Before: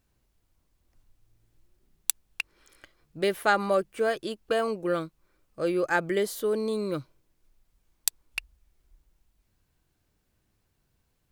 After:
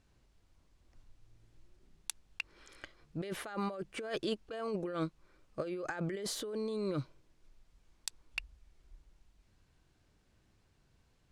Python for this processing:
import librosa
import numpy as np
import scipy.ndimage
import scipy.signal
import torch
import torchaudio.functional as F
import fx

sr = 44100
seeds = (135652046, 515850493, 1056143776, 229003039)

y = scipy.signal.sosfilt(scipy.signal.butter(2, 7000.0, 'lowpass', fs=sr, output='sos'), x)
y = fx.over_compress(y, sr, threshold_db=-34.0, ratio=-1.0)
y = y * librosa.db_to_amplitude(-3.5)